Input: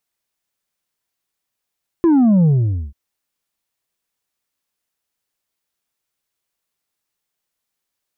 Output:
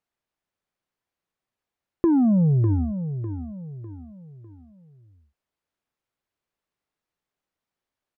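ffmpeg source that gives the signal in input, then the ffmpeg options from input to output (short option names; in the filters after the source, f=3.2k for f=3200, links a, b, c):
-f lavfi -i "aevalsrc='0.316*clip((0.89-t)/0.48,0,1)*tanh(1.58*sin(2*PI*350*0.89/log(65/350)*(exp(log(65/350)*t/0.89)-1)))/tanh(1.58)':d=0.89:s=44100"
-af "lowpass=f=1.4k:p=1,acompressor=threshold=-18dB:ratio=4,aecho=1:1:601|1202|1803|2404:0.316|0.126|0.0506|0.0202"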